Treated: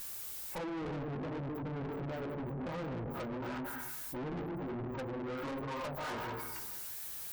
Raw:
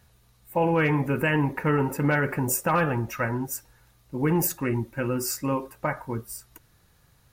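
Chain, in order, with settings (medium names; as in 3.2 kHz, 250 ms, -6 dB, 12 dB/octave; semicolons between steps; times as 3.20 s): on a send at -5 dB: reverberation RT60 1.1 s, pre-delay 124 ms; on the sum: chorus 1.4 Hz, delay 15 ms, depth 7.2 ms; low-pass 4.5 kHz; low-pass that closes with the level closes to 330 Hz, closed at -25 dBFS; tilt shelf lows -4 dB, about 660 Hz; added noise violet -49 dBFS; spectral gate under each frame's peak -25 dB strong; bass shelf 270 Hz -10.5 dB; valve stage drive 48 dB, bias 0.55; trim +10.5 dB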